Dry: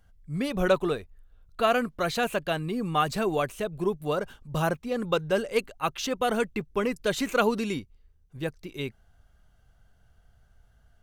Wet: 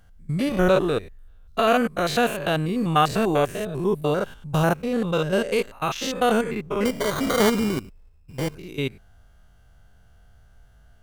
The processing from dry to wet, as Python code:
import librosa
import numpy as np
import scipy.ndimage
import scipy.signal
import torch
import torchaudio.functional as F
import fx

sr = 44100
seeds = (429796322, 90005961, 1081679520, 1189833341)

y = fx.spec_steps(x, sr, hold_ms=100)
y = fx.sample_hold(y, sr, seeds[0], rate_hz=2600.0, jitter_pct=0, at=(6.85, 8.55))
y = F.gain(torch.from_numpy(y), 8.0).numpy()